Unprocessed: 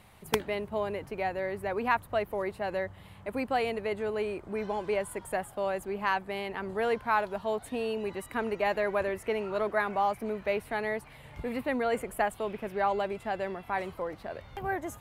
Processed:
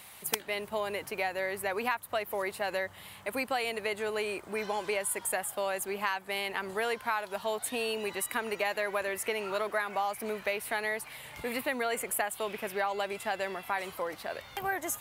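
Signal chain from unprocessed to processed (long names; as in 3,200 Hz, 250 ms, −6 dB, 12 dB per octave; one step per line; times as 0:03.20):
spectral tilt +3.5 dB per octave
downward compressor 6 to 1, threshold −31 dBFS, peak gain reduction 12.5 dB
level +3.5 dB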